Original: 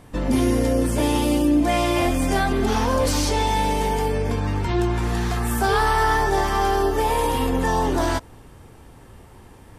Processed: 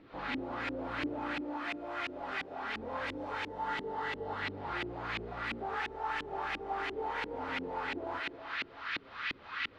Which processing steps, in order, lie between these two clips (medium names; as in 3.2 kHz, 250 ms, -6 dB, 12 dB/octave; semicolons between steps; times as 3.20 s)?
square wave that keeps the level; band noise 1.1–4.5 kHz -29 dBFS; tilt EQ +3.5 dB/octave; feedback comb 280 Hz, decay 0.59 s, harmonics odd, mix 80%; upward compressor, threshold -24 dBFS; 1.38–2.77 s: bass shelf 350 Hz -7.5 dB; compression, threshold -23 dBFS, peak gain reduction 5.5 dB; flange 1.8 Hz, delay 9.4 ms, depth 3 ms, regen -55%; saturation -28 dBFS, distortion -9 dB; thinning echo 191 ms, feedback 65%, high-pass 340 Hz, level -5.5 dB; LFO low-pass saw up 2.9 Hz 290–2500 Hz; 3.48–4.42 s: band-stop 2.4 kHz, Q 6